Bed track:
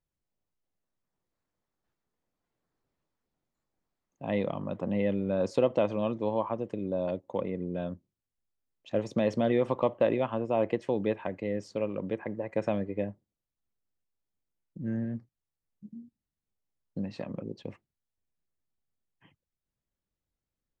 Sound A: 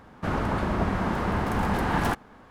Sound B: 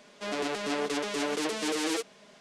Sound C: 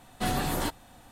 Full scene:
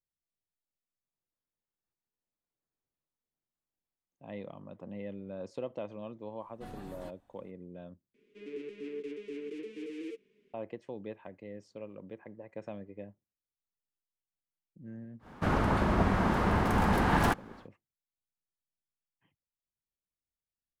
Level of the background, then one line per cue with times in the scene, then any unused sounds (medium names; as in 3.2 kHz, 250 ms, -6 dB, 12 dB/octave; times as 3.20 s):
bed track -13 dB
6.40 s: add C -17 dB + treble shelf 2.2 kHz -11.5 dB
8.14 s: replace with B -13.5 dB + FFT filter 200 Hz 0 dB, 430 Hz +9 dB, 660 Hz -29 dB, 1.4 kHz -16 dB, 2.4 kHz 0 dB, 4.2 kHz -16 dB, 11 kHz -20 dB
15.19 s: add A -1 dB, fades 0.10 s